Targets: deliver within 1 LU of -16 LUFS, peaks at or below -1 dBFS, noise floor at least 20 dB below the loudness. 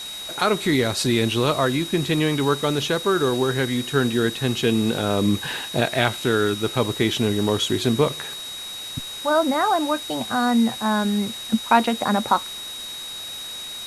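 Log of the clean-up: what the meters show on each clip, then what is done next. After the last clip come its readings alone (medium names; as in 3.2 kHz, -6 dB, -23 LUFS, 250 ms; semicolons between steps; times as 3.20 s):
steady tone 3.8 kHz; tone level -32 dBFS; noise floor -34 dBFS; noise floor target -42 dBFS; loudness -22.0 LUFS; peak level -2.5 dBFS; loudness target -16.0 LUFS
-> band-stop 3.8 kHz, Q 30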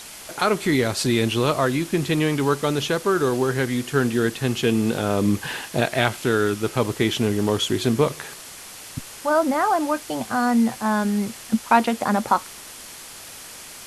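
steady tone not found; noise floor -40 dBFS; noise floor target -42 dBFS
-> noise reduction 6 dB, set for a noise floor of -40 dBFS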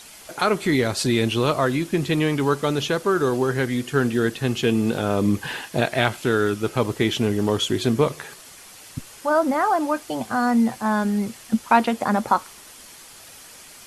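noise floor -45 dBFS; loudness -22.0 LUFS; peak level -2.5 dBFS; loudness target -16.0 LUFS
-> trim +6 dB; peak limiter -1 dBFS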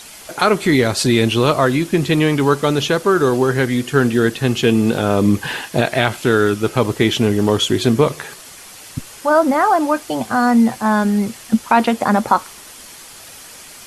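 loudness -16.5 LUFS; peak level -1.0 dBFS; noise floor -39 dBFS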